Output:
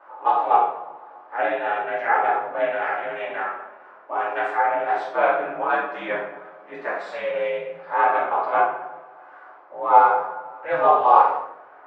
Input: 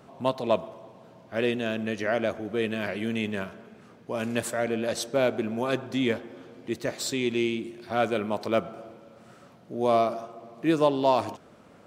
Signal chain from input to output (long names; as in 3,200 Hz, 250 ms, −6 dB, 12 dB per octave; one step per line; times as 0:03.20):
ring modulation 180 Hz, from 0:05.02 65 Hz, from 0:07.05 180 Hz
flat-topped band-pass 1,100 Hz, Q 1.2
convolution reverb RT60 0.70 s, pre-delay 3 ms, DRR −8.5 dB
level +6.5 dB